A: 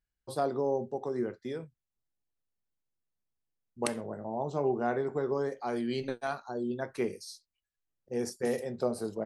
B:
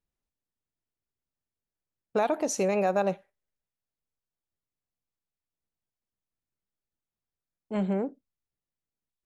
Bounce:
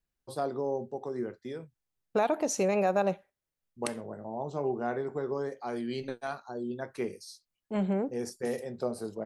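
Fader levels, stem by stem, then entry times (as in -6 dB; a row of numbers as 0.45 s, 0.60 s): -2.0 dB, -1.0 dB; 0.00 s, 0.00 s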